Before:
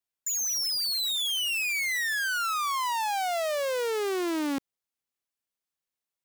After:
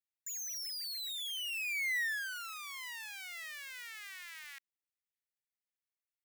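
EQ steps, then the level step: ladder high-pass 1700 Hz, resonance 60%; high shelf 9500 Hz +6 dB; -4.0 dB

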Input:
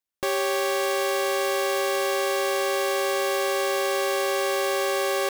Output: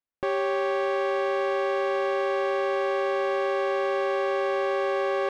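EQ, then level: Bessel low-pass 1700 Hz, order 2; 0.0 dB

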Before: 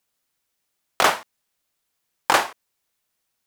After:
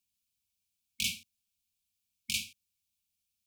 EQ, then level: brick-wall FIR band-stop 240–2200 Hz; bell 110 Hz +13.5 dB 1.9 oct; fixed phaser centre 340 Hz, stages 4; -7.0 dB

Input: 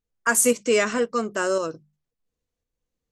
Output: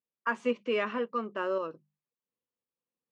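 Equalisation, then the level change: speaker cabinet 280–2700 Hz, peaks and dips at 310 Hz -6 dB, 450 Hz -6 dB, 690 Hz -9 dB, 1500 Hz -8 dB, 2100 Hz -8 dB; -2.5 dB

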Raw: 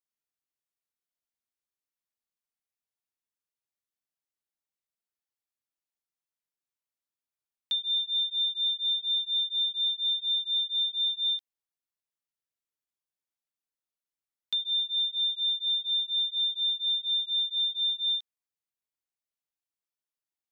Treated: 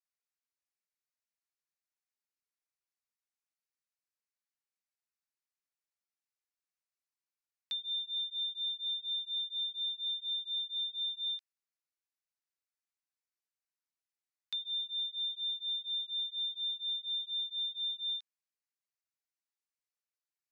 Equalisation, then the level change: band-pass 3100 Hz, Q 0.58; bell 3300 Hz -13.5 dB 0.31 oct; 0.0 dB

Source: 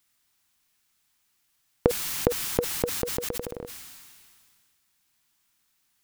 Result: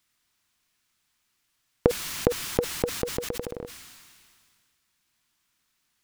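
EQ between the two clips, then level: high shelf 9100 Hz -8.5 dB; notch 810 Hz, Q 12; +1.0 dB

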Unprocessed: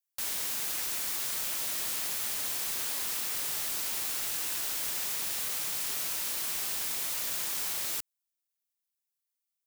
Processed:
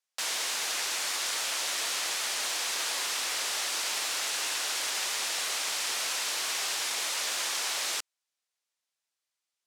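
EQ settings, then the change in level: BPF 470–6800 Hz; +8.0 dB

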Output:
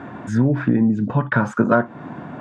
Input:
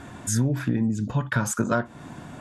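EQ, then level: HPF 150 Hz 12 dB/oct; LPF 1700 Hz 12 dB/oct; +8.5 dB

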